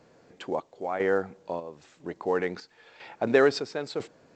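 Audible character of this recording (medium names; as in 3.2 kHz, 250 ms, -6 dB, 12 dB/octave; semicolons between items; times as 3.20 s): chopped level 1 Hz, depth 60%, duty 60%; A-law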